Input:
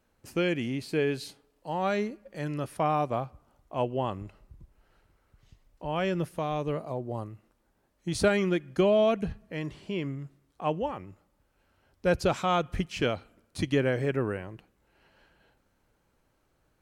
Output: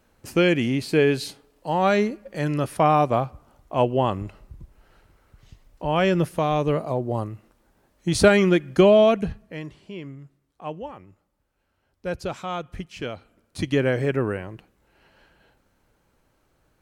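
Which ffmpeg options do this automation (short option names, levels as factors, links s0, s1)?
-af "volume=7.5,afade=t=out:st=8.87:d=0.89:silence=0.237137,afade=t=in:st=13.09:d=0.81:silence=0.354813"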